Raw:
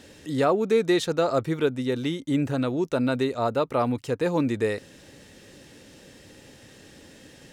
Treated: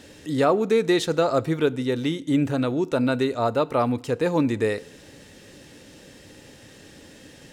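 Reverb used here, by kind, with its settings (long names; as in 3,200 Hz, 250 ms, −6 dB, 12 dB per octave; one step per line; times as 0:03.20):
feedback delay network reverb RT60 0.74 s, high-frequency decay 0.95×, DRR 18 dB
level +2 dB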